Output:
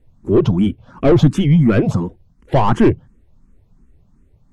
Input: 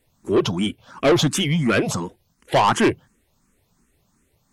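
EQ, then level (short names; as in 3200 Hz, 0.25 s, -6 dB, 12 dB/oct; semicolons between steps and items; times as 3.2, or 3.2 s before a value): tilt -4 dB/oct; -1.0 dB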